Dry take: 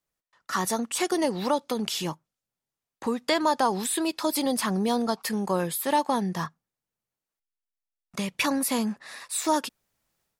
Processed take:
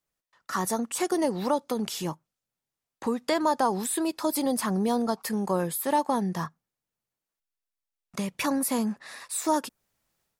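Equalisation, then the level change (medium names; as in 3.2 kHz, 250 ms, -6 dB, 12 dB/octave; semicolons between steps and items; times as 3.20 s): dynamic bell 3.2 kHz, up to -7 dB, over -44 dBFS, Q 0.75; 0.0 dB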